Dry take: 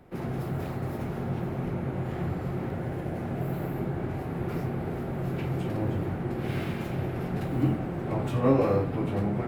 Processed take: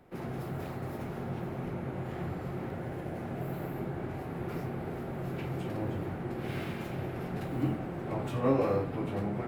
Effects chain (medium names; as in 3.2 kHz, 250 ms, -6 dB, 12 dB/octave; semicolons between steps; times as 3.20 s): bass shelf 240 Hz -4.5 dB; trim -3 dB